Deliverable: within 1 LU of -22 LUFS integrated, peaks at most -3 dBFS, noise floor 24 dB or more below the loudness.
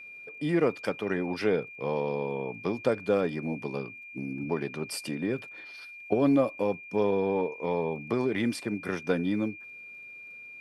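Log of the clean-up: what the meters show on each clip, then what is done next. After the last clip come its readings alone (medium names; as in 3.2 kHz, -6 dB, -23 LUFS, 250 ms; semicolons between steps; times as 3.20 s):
tick rate 17 per s; steady tone 2.4 kHz; tone level -43 dBFS; loudness -30.0 LUFS; peak level -11.0 dBFS; loudness target -22.0 LUFS
-> de-click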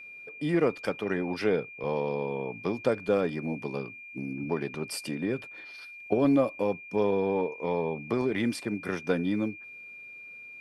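tick rate 0 per s; steady tone 2.4 kHz; tone level -43 dBFS
-> band-stop 2.4 kHz, Q 30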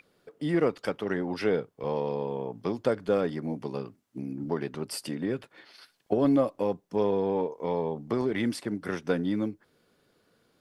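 steady tone not found; loudness -30.0 LUFS; peak level -11.5 dBFS; loudness target -22.0 LUFS
-> trim +8 dB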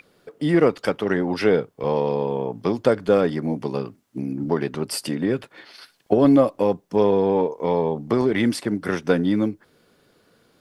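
loudness -22.0 LUFS; peak level -3.5 dBFS; noise floor -62 dBFS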